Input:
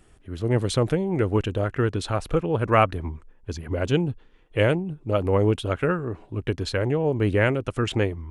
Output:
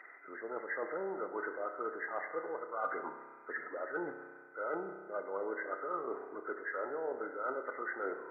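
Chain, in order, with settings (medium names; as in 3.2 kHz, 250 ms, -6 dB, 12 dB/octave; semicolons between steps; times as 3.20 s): knee-point frequency compression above 1.2 kHz 4:1; Bessel high-pass 630 Hz, order 4; reverse; compression 10:1, threshold -39 dBFS, peak gain reduction 23.5 dB; reverse; spring tank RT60 1.4 s, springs 31 ms, chirp 20 ms, DRR 6.5 dB; tape noise reduction on one side only encoder only; trim +3 dB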